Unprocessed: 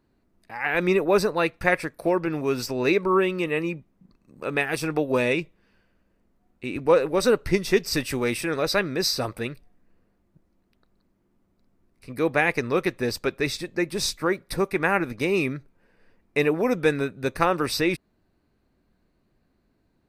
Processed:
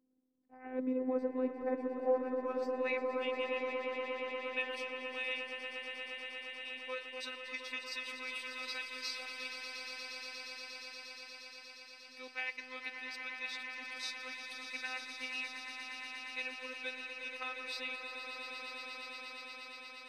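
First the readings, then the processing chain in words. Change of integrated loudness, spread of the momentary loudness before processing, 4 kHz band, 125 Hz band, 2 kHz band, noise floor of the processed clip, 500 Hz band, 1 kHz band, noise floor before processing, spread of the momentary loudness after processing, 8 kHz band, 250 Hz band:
-15.0 dB, 8 LU, -9.5 dB, under -40 dB, -11.0 dB, -54 dBFS, -15.5 dB, -15.0 dB, -69 dBFS, 10 LU, -18.0 dB, -16.5 dB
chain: band-pass sweep 340 Hz -> 3 kHz, 1.69–3.19 s; bass shelf 440 Hz +5.5 dB; robot voice 257 Hz; on a send: echo with a slow build-up 118 ms, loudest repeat 8, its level -9 dB; on the sum: attacks held to a fixed rise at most 440 dB/s; trim -6 dB

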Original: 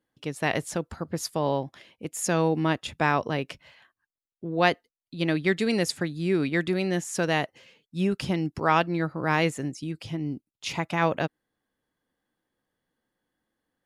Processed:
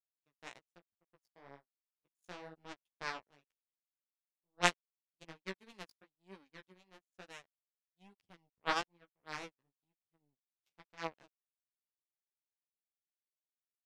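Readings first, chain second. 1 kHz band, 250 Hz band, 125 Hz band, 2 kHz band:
-15.0 dB, -26.5 dB, -27.5 dB, -13.5 dB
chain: power-law waveshaper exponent 3; flange 1.1 Hz, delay 9.4 ms, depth 7.9 ms, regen +1%; upward expansion 1.5:1, over -60 dBFS; trim +2.5 dB

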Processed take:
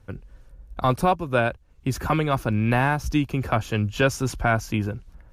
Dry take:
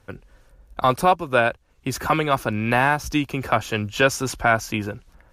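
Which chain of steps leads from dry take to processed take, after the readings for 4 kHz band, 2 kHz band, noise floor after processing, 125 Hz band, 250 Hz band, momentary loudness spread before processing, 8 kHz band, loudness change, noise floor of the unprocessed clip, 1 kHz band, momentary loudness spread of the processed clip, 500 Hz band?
-5.0 dB, -4.5 dB, -53 dBFS, +4.0 dB, +0.5 dB, 12 LU, -5.0 dB, -2.5 dB, -58 dBFS, -4.0 dB, 10 LU, -3.0 dB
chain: bass shelf 250 Hz +11.5 dB; trim -5 dB

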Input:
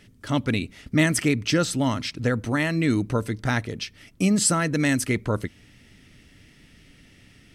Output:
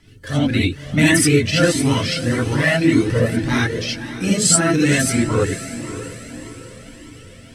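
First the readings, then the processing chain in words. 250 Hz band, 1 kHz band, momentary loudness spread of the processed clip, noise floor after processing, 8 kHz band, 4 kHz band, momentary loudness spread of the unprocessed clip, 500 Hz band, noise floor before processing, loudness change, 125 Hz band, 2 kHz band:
+6.0 dB, +4.0 dB, 17 LU, -42 dBFS, +8.5 dB, +8.0 dB, 8 LU, +8.0 dB, -55 dBFS, +6.5 dB, +6.5 dB, +7.5 dB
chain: coarse spectral quantiser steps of 15 dB; in parallel at -3 dB: level held to a coarse grid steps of 9 dB; on the sum: rotary cabinet horn 6.7 Hz; on a send: echo that smears into a reverb 554 ms, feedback 49%, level -12.5 dB; on the sum: gated-style reverb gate 100 ms rising, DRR -5.5 dB; Shepard-style flanger rising 1.7 Hz; trim +4.5 dB

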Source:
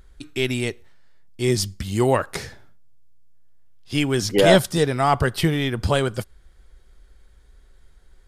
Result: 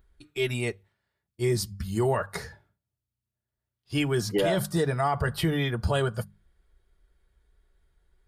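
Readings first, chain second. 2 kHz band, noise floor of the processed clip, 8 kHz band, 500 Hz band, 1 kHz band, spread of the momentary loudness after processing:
-6.5 dB, under -85 dBFS, -7.5 dB, -7.0 dB, -7.0 dB, 13 LU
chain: spectral noise reduction 9 dB; peaking EQ 6 kHz -6.5 dB 1 oct; hum notches 50/100/150/200 Hz; comb of notches 260 Hz; peak limiter -15 dBFS, peak gain reduction 11.5 dB; trim -1.5 dB

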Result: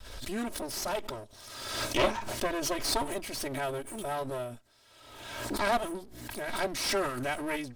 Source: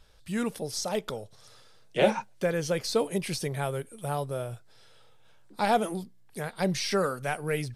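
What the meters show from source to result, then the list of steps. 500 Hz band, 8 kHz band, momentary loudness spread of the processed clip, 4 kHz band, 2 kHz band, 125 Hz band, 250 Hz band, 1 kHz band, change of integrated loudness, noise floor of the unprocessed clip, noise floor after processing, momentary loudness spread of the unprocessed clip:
-4.5 dB, +1.0 dB, 13 LU, +1.5 dB, +0.5 dB, -9.0 dB, -4.0 dB, -1.5 dB, -2.5 dB, -55 dBFS, -57 dBFS, 13 LU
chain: comb filter that takes the minimum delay 3.1 ms; swell ahead of each attack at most 44 dB/s; trim -2.5 dB

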